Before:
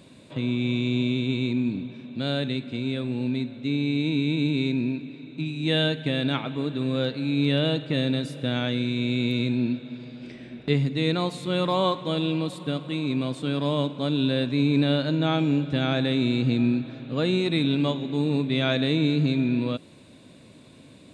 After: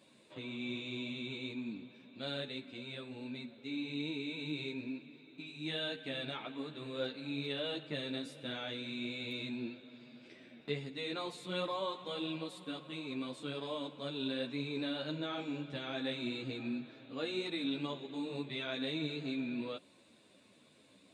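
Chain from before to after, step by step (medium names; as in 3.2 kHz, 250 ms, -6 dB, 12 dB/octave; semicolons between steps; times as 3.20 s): high-pass 430 Hz 6 dB/octave; peak limiter -17.5 dBFS, peak gain reduction 6 dB; three-phase chorus; trim -6.5 dB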